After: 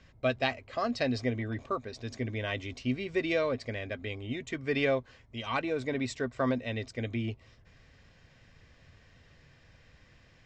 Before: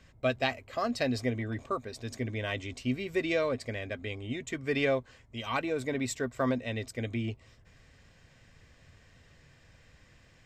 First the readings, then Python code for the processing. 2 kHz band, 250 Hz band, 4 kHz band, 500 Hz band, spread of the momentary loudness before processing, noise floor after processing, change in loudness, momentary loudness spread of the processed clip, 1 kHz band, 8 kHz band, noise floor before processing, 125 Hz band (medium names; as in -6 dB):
0.0 dB, 0.0 dB, 0.0 dB, 0.0 dB, 8 LU, -60 dBFS, 0.0 dB, 8 LU, 0.0 dB, -6.5 dB, -60 dBFS, 0.0 dB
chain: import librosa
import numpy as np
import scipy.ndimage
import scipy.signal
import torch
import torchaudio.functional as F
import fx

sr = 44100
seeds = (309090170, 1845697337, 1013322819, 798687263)

y = scipy.signal.sosfilt(scipy.signal.butter(4, 6200.0, 'lowpass', fs=sr, output='sos'), x)